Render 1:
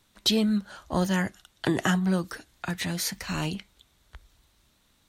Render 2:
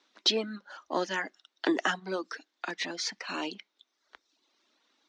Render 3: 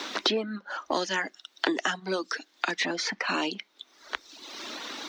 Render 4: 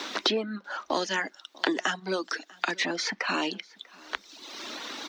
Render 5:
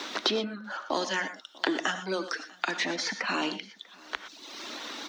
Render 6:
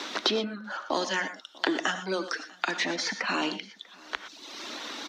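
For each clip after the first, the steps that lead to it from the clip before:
elliptic band-pass 290–5700 Hz, stop band 40 dB; reverb removal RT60 0.84 s
three-band squash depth 100%; gain +4 dB
echo 0.643 s -24 dB
non-linear reverb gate 0.14 s rising, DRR 10 dB; gain -1.5 dB
downsampling 32000 Hz; gain +1 dB

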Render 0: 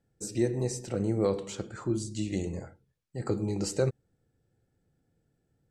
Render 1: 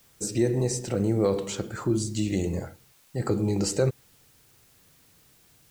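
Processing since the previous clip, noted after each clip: in parallel at +1.5 dB: limiter -25 dBFS, peak gain reduction 10.5 dB; on the sum: requantised 10-bit, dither triangular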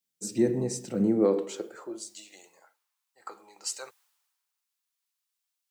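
high-pass sweep 190 Hz -> 1000 Hz, 0.95–2.51; three-band expander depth 70%; gain -8.5 dB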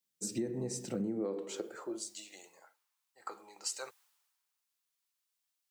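compressor 6:1, threshold -32 dBFS, peak gain reduction 13 dB; gain -1 dB

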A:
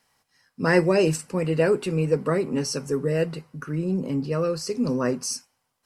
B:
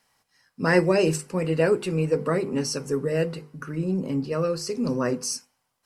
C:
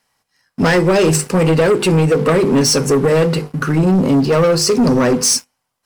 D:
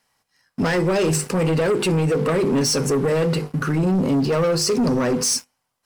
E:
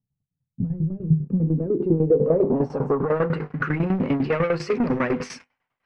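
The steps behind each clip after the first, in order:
notches 50/100/150/200/250/300/350/400/450/500 Hz
compressor 6:1, threshold -23 dBFS, peak gain reduction 9.5 dB; sample leveller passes 3; gain +7.5 dB
limiter -13 dBFS, peak gain reduction 6 dB; gain -2 dB
tremolo saw down 10 Hz, depth 80%; low-pass sweep 140 Hz -> 2200 Hz, 0.98–3.69

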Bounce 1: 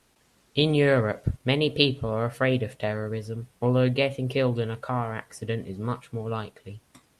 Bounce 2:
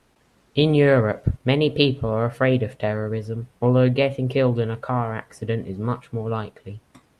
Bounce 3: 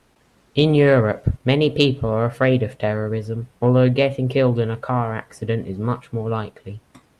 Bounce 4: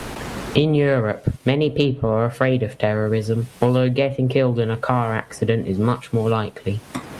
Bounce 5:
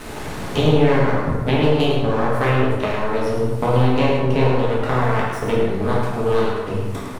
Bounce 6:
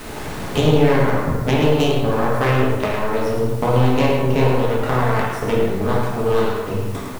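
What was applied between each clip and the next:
high shelf 3000 Hz -9.5 dB; gain +5 dB
soft clip -4.5 dBFS, distortion -28 dB; gain +2.5 dB
three-band squash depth 100%; gain -1 dB
half-wave rectifier; echo 0.106 s -7 dB; plate-style reverb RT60 1.3 s, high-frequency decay 0.55×, DRR -5.5 dB; gain -3 dB
tracing distortion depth 0.062 ms; in parallel at -7.5 dB: requantised 6-bit, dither triangular; on the sum: gain -2.5 dB

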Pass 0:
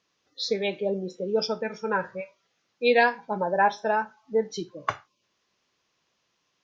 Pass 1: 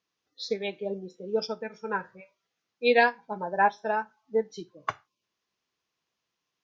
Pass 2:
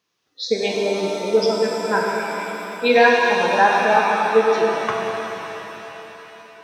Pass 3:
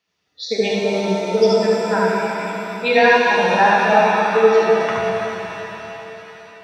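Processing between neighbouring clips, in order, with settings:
notch 560 Hz, Q 12; upward expander 1.5:1, over -36 dBFS
HPF 52 Hz; maximiser +13.5 dB; shimmer reverb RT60 3.9 s, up +7 st, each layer -8 dB, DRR -2 dB; gain -5.5 dB
reverb RT60 0.10 s, pre-delay 71 ms, DRR 3 dB; gain -6.5 dB

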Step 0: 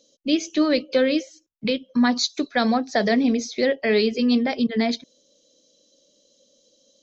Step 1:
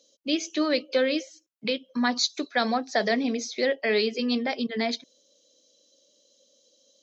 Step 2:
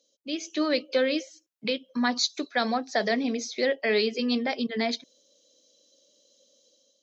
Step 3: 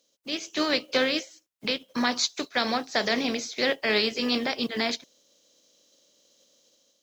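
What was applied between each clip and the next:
HPF 430 Hz 6 dB/oct; gain -1.5 dB
AGC gain up to 7.5 dB; gain -7.5 dB
spectral contrast lowered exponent 0.61

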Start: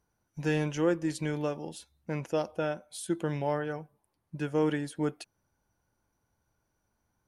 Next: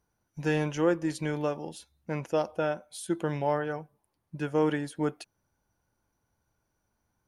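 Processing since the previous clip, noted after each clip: notch 7800 Hz, Q 16; dynamic EQ 920 Hz, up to +4 dB, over -40 dBFS, Q 0.72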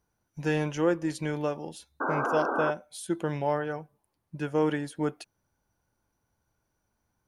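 painted sound noise, 2–2.71, 230–1600 Hz -29 dBFS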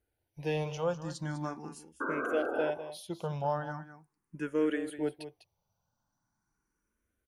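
echo 0.2 s -12 dB; endless phaser +0.41 Hz; gain -2 dB

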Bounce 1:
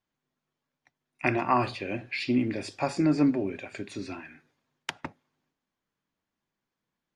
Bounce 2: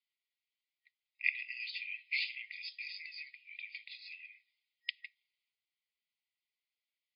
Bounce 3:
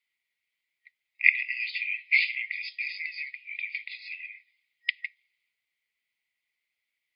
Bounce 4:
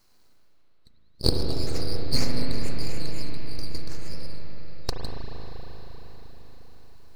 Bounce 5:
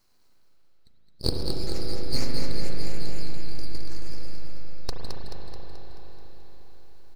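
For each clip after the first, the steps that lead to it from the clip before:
FFT band-pass 1900–5100 Hz; gain -1 dB
bell 2100 Hz +12.5 dB 0.62 oct; gain +3 dB
reverse; upward compressor, threshold -44 dBFS; reverse; full-wave rectifier; reverb RT60 5.5 s, pre-delay 35 ms, DRR -2 dB; gain -1 dB
feedback echo 0.216 s, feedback 56%, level -6 dB; gain -4 dB

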